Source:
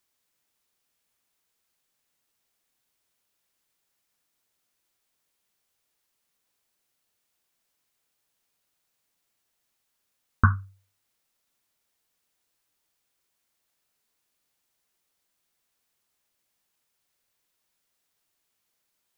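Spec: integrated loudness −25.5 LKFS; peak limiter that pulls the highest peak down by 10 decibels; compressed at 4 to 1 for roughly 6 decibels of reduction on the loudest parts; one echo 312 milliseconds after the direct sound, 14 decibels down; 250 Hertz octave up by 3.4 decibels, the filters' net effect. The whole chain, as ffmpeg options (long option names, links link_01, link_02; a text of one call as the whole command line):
ffmpeg -i in.wav -af "equalizer=frequency=250:width_type=o:gain=4,acompressor=threshold=-19dB:ratio=4,alimiter=limit=-16.5dB:level=0:latency=1,aecho=1:1:312:0.2,volume=11.5dB" out.wav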